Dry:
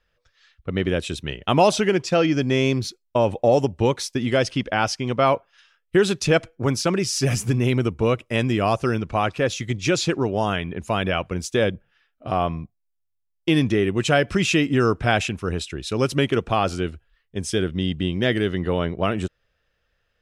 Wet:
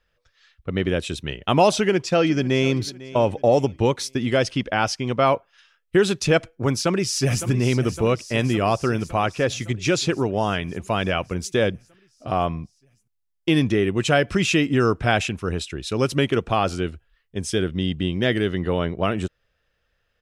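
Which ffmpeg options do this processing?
ffmpeg -i in.wav -filter_complex "[0:a]asplit=2[link_01][link_02];[link_02]afade=type=in:start_time=1.76:duration=0.01,afade=type=out:start_time=2.76:duration=0.01,aecho=0:1:500|1000|1500:0.125893|0.0440624|0.0154218[link_03];[link_01][link_03]amix=inputs=2:normalize=0,asplit=2[link_04][link_05];[link_05]afade=type=in:start_time=6.74:duration=0.01,afade=type=out:start_time=7.47:duration=0.01,aecho=0:1:560|1120|1680|2240|2800|3360|3920|4480|5040|5600:0.251189|0.175832|0.123082|0.0861577|0.0603104|0.0422173|0.0295521|0.0206865|0.0144805|0.0101364[link_06];[link_04][link_06]amix=inputs=2:normalize=0" out.wav

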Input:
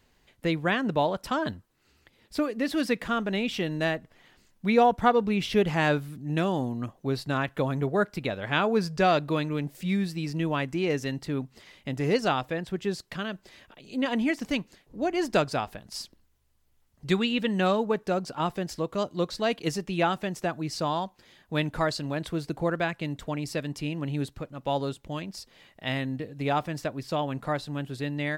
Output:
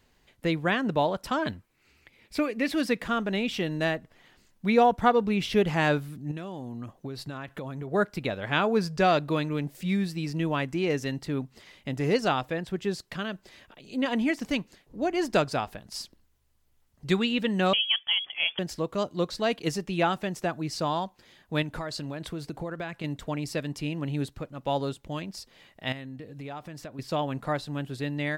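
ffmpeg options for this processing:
ffmpeg -i in.wav -filter_complex "[0:a]asettb=1/sr,asplit=3[link_01][link_02][link_03];[link_01]atrim=end=1.394[link_04];[link_02]atrim=start=1.39:end=2.74,asetpts=PTS-STARTPTS,afade=type=in:duration=0.004:curve=qsin,afade=type=out:start_time=1.346:duration=0.004:curve=qsin,equalizer=frequency=2300:width_type=o:width=0.36:gain=11[link_05];[link_03]atrim=start=2.736[link_06];[link_04][link_05]acrossfade=duration=0.004:curve1=hsin:curve2=qsin[link_07];[link_07][link_06]acrossfade=duration=0.004:curve1=qsin:curve2=hsin,asettb=1/sr,asplit=3[link_08][link_09][link_10];[link_08]atrim=end=6.314[link_11];[link_09]atrim=start=6.31:end=7.92,asetpts=PTS-STARTPTS,afade=type=in:duration=0.004:curve=qsin,afade=type=out:start_time=1.606:duration=0.004:curve=qsin,acompressor=threshold=-32dB:ratio=10:attack=3.2:release=140:knee=1:detection=peak[link_12];[link_10]atrim=start=7.916[link_13];[link_11][link_12]acrossfade=duration=0.004:curve1=hsin:curve2=qsin[link_14];[link_14][link_13]acrossfade=duration=0.004:curve1=qsin:curve2=hsin,asettb=1/sr,asplit=3[link_15][link_16][link_17];[link_15]atrim=end=17.734[link_18];[link_16]atrim=start=17.73:end=18.59,asetpts=PTS-STARTPTS,afade=type=in:duration=0.004:curve=qsin,afade=type=out:start_time=0.856:duration=0.004:curve=qsin,lowpass=frequency=3000:width_type=q:width=0.5098,lowpass=frequency=3000:width_type=q:width=0.6013,lowpass=frequency=3000:width_type=q:width=0.9,lowpass=frequency=3000:width_type=q:width=2.563,afreqshift=-3500[link_19];[link_17]atrim=start=18.586[link_20];[link_18][link_19]acrossfade=duration=0.004:curve1=hsin:curve2=qsin[link_21];[link_21][link_20]acrossfade=duration=0.004:curve1=qsin:curve2=hsin,asettb=1/sr,asplit=3[link_22][link_23][link_24];[link_22]atrim=end=21.624[link_25];[link_23]atrim=start=21.62:end=23.04,asetpts=PTS-STARTPTS,afade=type=in:duration=0.004:curve=qsin,afade=type=out:start_time=1.416:duration=0.004:curve=qsin,acompressor=threshold=-30dB:ratio=6:attack=3.2:release=140:knee=1:detection=peak[link_26];[link_24]atrim=start=23.036[link_27];[link_25][link_26]acrossfade=duration=0.004:curve1=hsin:curve2=qsin[link_28];[link_28][link_27]acrossfade=duration=0.004:curve1=qsin:curve2=hsin,asettb=1/sr,asplit=3[link_29][link_30][link_31];[link_29]atrim=end=25.924[link_32];[link_30]atrim=start=25.92:end=26.99,asetpts=PTS-STARTPTS,afade=type=in:duration=0.004:curve=qsin,afade=type=out:start_time=1.066:duration=0.004:curve=qsin,acompressor=threshold=-39dB:ratio=3:attack=3.2:release=140:knee=1:detection=peak[link_33];[link_31]atrim=start=26.986[link_34];[link_32][link_33]acrossfade=duration=0.004:curve1=hsin:curve2=qsin[link_35];[link_35][link_34]acrossfade=duration=0.004:curve1=qsin:curve2=hsin" out.wav

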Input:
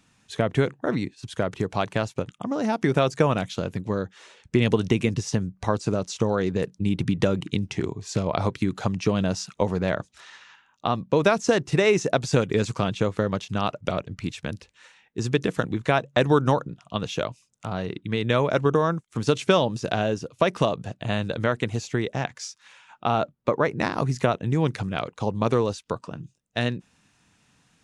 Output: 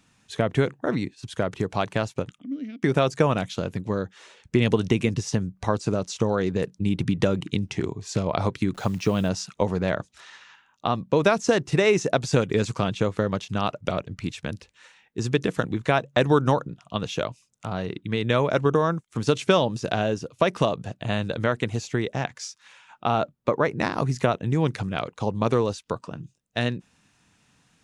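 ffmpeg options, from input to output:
ffmpeg -i in.wav -filter_complex "[0:a]asplit=3[link_01][link_02][link_03];[link_01]afade=type=out:start_time=2.39:duration=0.02[link_04];[link_02]asplit=3[link_05][link_06][link_07];[link_05]bandpass=frequency=270:width_type=q:width=8,volume=0dB[link_08];[link_06]bandpass=frequency=2290:width_type=q:width=8,volume=-6dB[link_09];[link_07]bandpass=frequency=3010:width_type=q:width=8,volume=-9dB[link_10];[link_08][link_09][link_10]amix=inputs=3:normalize=0,afade=type=in:start_time=2.39:duration=0.02,afade=type=out:start_time=2.82:duration=0.02[link_11];[link_03]afade=type=in:start_time=2.82:duration=0.02[link_12];[link_04][link_11][link_12]amix=inputs=3:normalize=0,asettb=1/sr,asplit=3[link_13][link_14][link_15];[link_13]atrim=end=8.744[link_16];[link_14]atrim=start=8.74:end=9.29,asetpts=PTS-STARTPTS,afade=type=in:duration=0.004:curve=qsin,afade=type=out:start_time=0.546:duration=0.004:curve=qsin,acrusher=bits=9:dc=4:mix=0:aa=0.000001[link_17];[link_15]atrim=start=9.286[link_18];[link_16][link_17]acrossfade=duration=0.004:curve1=hsin:curve2=qsin[link_19];[link_19][link_18]acrossfade=duration=0.004:curve1=qsin:curve2=hsin" out.wav

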